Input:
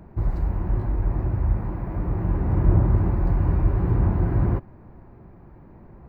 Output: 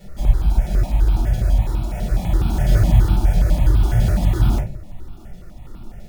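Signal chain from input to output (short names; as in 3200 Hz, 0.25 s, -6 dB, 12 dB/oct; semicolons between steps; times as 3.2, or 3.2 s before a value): dynamic EQ 910 Hz, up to +8 dB, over -55 dBFS, Q 3.8; in parallel at +1 dB: compressor, threshold -47 dBFS, peak gain reduction 31.5 dB; on the sum: sample-rate reducer 1600 Hz, jitter 0%; shoebox room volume 150 m³, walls furnished, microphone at 4.5 m; step phaser 12 Hz 300–1900 Hz; gain -8 dB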